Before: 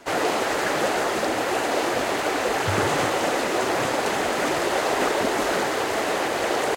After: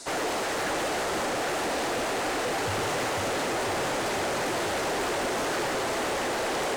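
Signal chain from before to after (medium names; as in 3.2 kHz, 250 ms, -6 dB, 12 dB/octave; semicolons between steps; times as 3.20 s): filtered feedback delay 496 ms, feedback 71%, low-pass 3.3 kHz, level -5 dB; hard clipper -24 dBFS, distortion -8 dB; band noise 3.8–9.3 kHz -42 dBFS; trim -2.5 dB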